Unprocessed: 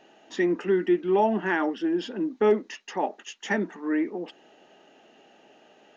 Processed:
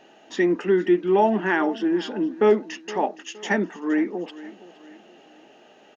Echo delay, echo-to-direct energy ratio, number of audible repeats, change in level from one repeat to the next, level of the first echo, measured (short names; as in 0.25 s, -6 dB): 0.467 s, -17.5 dB, 3, -8.0 dB, -18.0 dB